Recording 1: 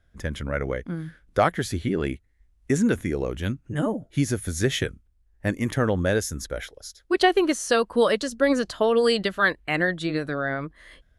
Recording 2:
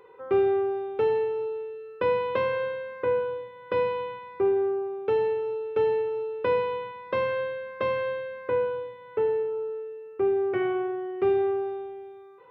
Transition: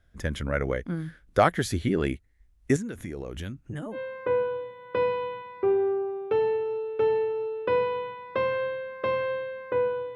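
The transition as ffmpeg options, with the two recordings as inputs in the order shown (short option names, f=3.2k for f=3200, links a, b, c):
-filter_complex "[0:a]asettb=1/sr,asplit=3[a][b][c];[a]atrim=end=2.764[d];[b]atrim=start=2.76:end=3.99,asetpts=PTS-STARTPTS,afade=t=in:d=0.004:c=qsin,afade=t=out:st=1.226:d=0.004:c=qsin,acompressor=threshold=-31dB:ratio=12:attack=3.2:release=140:knee=1:detection=peak[e];[c]atrim=start=3.986[f];[d][e]acrossfade=d=0.004:c1=hsin:c2=qsin[g];[g][f]acrossfade=d=0.004:c1=qsin:c2=hsin,apad=whole_dur=10.15,atrim=end=10.15,atrim=end=3.99,asetpts=PTS-STARTPTS[h];[1:a]atrim=start=2.68:end=8.92,asetpts=PTS-STARTPTS[i];[h][i]acrossfade=d=0.08:c1=tri:c2=tri"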